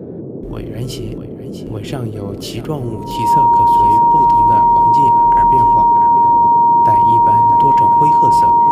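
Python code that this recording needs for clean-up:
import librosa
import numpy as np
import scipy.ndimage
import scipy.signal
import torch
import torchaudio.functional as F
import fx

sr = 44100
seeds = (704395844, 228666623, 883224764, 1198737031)

y = fx.notch(x, sr, hz=940.0, q=30.0)
y = fx.noise_reduce(y, sr, print_start_s=0.0, print_end_s=0.5, reduce_db=30.0)
y = fx.fix_echo_inverse(y, sr, delay_ms=645, level_db=-11.5)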